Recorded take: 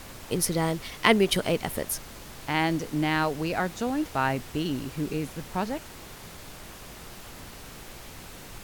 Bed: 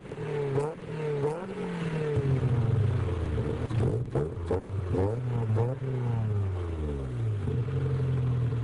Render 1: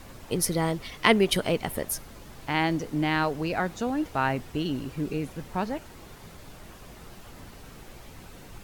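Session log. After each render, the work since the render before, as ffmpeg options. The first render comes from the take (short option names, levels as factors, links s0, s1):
-af "afftdn=nr=7:nf=-45"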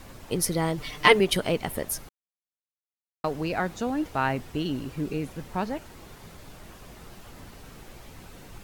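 -filter_complex "[0:a]asettb=1/sr,asplit=3[s0][s1][s2];[s0]atrim=end=0.774[s3];[s1]atrim=start=0.77:end=1.2,asetpts=PTS-STARTPTS,afade=t=in:d=0.004:c=qsin,afade=t=out:st=0.426:d=0.004:c=qsin,aecho=1:1:6.7:0.99,atrim=end_sample=18963[s4];[s2]atrim=start=1.196[s5];[s3][s4]acrossfade=d=0.004:c1=hsin:c2=qsin[s6];[s6][s5]acrossfade=d=0.004:c1=qsin:c2=hsin,asplit=3[s7][s8][s9];[s7]atrim=end=2.09,asetpts=PTS-STARTPTS,afade=t=out:st=2.086:d=0.004:c=hsin[s10];[s8]atrim=start=2.09:end=3.24,asetpts=PTS-STARTPTS,volume=0[s11];[s9]atrim=start=3.24,asetpts=PTS-STARTPTS,afade=t=in:d=0.004:c=hsin[s12];[s10][s11][s12]concat=n=3:v=0:a=1"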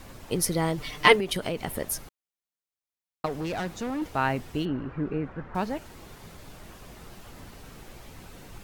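-filter_complex "[0:a]asettb=1/sr,asplit=3[s0][s1][s2];[s0]atrim=end=1.154[s3];[s1]atrim=start=1.15:end=1.8,asetpts=PTS-STARTPTS,afade=t=in:d=0.004:c=qsin,afade=t=out:st=0.646:d=0.004:c=qsin,acompressor=threshold=0.0631:ratio=6:attack=3.2:release=140:knee=1:detection=peak[s4];[s2]atrim=start=1.796[s5];[s3][s4]acrossfade=d=0.004:c1=hsin:c2=qsin[s6];[s6][s5]acrossfade=d=0.004:c1=qsin:c2=hsin,asettb=1/sr,asplit=3[s7][s8][s9];[s7]atrim=end=3.264[s10];[s8]atrim=start=3.26:end=4.02,asetpts=PTS-STARTPTS,afade=t=in:d=0.004:c=qsin,afade=t=out:st=0.756:d=0.004:c=qsin,asoftclip=type=hard:threshold=0.0422[s11];[s9]atrim=start=4.016[s12];[s10][s11]acrossfade=d=0.004:c1=hsin:c2=qsin[s13];[s13][s12]acrossfade=d=0.004:c1=qsin:c2=hsin,asettb=1/sr,asplit=3[s14][s15][s16];[s14]atrim=end=4.654[s17];[s15]atrim=start=4.65:end=5.55,asetpts=PTS-STARTPTS,afade=t=in:d=0.004:c=qsin,afade=t=out:st=0.896:d=0.004:c=qsin,lowpass=f=1500:t=q:w=2[s18];[s16]atrim=start=5.546[s19];[s17][s18]acrossfade=d=0.004:c1=hsin:c2=qsin[s20];[s20][s19]acrossfade=d=0.004:c1=qsin:c2=hsin"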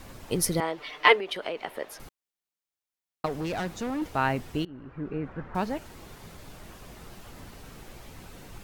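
-filter_complex "[0:a]asettb=1/sr,asplit=3[s0][s1][s2];[s0]atrim=end=0.604[s3];[s1]atrim=start=0.6:end=2,asetpts=PTS-STARTPTS,afade=t=in:d=0.004:c=qsin,afade=t=out:st=1.396:d=0.004:c=qsin,acrossover=split=340 4200:gain=0.0708 1 0.141[s4][s5][s6];[s4][s5][s6]amix=inputs=3:normalize=0[s7];[s2]atrim=start=1.996[s8];[s3][s7]acrossfade=d=0.004:c1=hsin:c2=qsin[s9];[s9][s8]acrossfade=d=0.004:c1=qsin:c2=hsin,asplit=2[s10][s11];[s10]atrim=end=4.65,asetpts=PTS-STARTPTS,afade=t=out:st=4.646:d=0.004:c=hsin:silence=0.1[s12];[s11]atrim=start=4.65,asetpts=PTS-STARTPTS,afade=t=in:d=0.74:silence=0.1[s13];[s12][s13]concat=n=2:v=0:a=1"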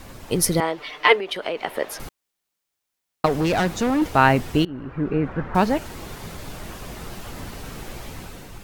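-af "dynaudnorm=f=110:g=9:m=2,alimiter=level_in=1.68:limit=0.891:release=50:level=0:latency=1"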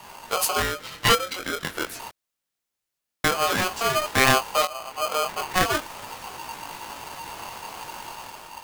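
-af "flanger=delay=19:depth=4.5:speed=0.31,aeval=exprs='val(0)*sgn(sin(2*PI*920*n/s))':c=same"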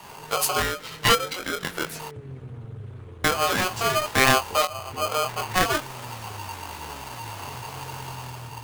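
-filter_complex "[1:a]volume=0.237[s0];[0:a][s0]amix=inputs=2:normalize=0"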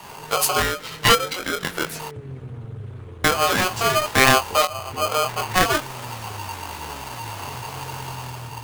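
-af "volume=1.5,alimiter=limit=0.794:level=0:latency=1"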